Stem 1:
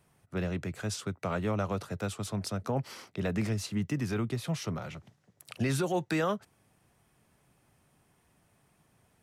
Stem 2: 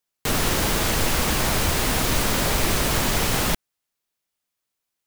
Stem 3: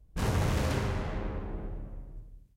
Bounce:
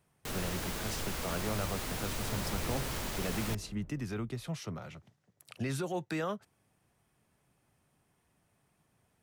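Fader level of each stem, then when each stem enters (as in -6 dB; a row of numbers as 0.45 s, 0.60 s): -5.5 dB, -16.0 dB, -13.5 dB; 0.00 s, 0.00 s, 2.05 s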